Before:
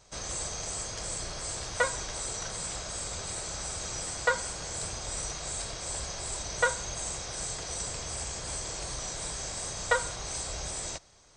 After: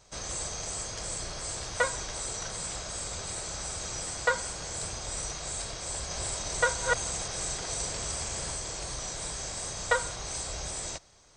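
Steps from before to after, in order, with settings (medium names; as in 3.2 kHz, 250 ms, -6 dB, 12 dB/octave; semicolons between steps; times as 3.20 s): 5.94–8.52 s: chunks repeated in reverse 168 ms, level -1.5 dB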